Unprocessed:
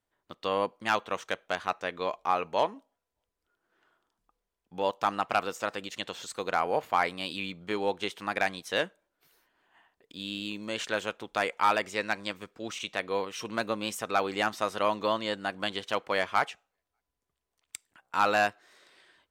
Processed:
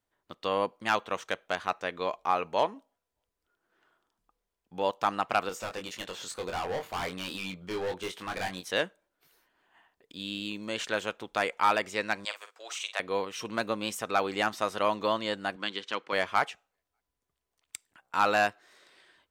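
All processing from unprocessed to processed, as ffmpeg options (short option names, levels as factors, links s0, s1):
-filter_complex "[0:a]asettb=1/sr,asplit=3[s0][s1][s2];[s0]atrim=end=5.494[s3];[s1]atrim=start=5.49:end=8.71,asetpts=PTS-STARTPTS,afade=t=in:d=0.004:c=qsin,afade=t=out:st=3.216:d=0.004:c=qsin,asoftclip=type=hard:threshold=0.0282,asplit=2[s4][s5];[s5]adelay=22,volume=0.562[s6];[s4][s6]amix=inputs=2:normalize=0,atrim=end_sample=142002[s7];[s2]atrim=start=8.706[s8];[s3][s7]acrossfade=d=0.004:c1=hsin:c2=qsin[s9];[s9][s8]acrossfade=d=0.004:c1=qsin:c2=hsin,asettb=1/sr,asplit=3[s10][s11][s12];[s10]atrim=end=12.254[s13];[s11]atrim=start=12.25:end=13,asetpts=PTS-STARTPTS,afade=t=in:d=0.004:c=qsin,afade=t=out:st=0.746:d=0.004:c=qsin,highpass=f=610:w=0.5412,highpass=f=610:w=1.3066,equalizer=f=7800:t=o:w=0.69:g=4.5,asplit=2[s14][s15];[s15]adelay=47,volume=0.316[s16];[s14][s16]amix=inputs=2:normalize=0,atrim=end_sample=33075[s17];[s12]atrim=start=12.996[s18];[s13][s17]acrossfade=d=0.004:c1=hsin:c2=qsin[s19];[s19][s18]acrossfade=d=0.004:c1=qsin:c2=hsin,asettb=1/sr,asplit=3[s20][s21][s22];[s20]atrim=end=15.564[s23];[s21]atrim=start=15.56:end=16.13,asetpts=PTS-STARTPTS,afade=t=in:d=0.004:c=qsin,afade=t=out:st=0.566:d=0.004:c=qsin,highpass=220,lowpass=6000,equalizer=f=670:w=2:g=-11[s24];[s22]atrim=start=16.126[s25];[s23][s24]acrossfade=d=0.004:c1=hsin:c2=qsin[s26];[s26][s25]acrossfade=d=0.004:c1=qsin:c2=hsin"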